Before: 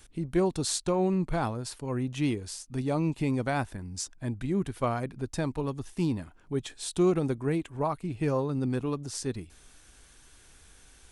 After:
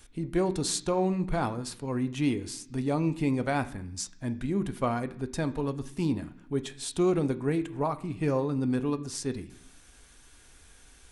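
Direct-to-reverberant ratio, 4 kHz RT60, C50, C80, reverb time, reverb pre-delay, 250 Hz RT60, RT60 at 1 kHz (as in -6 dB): 8.5 dB, 0.85 s, 16.0 dB, 18.5 dB, 0.70 s, 3 ms, 0.95 s, 0.70 s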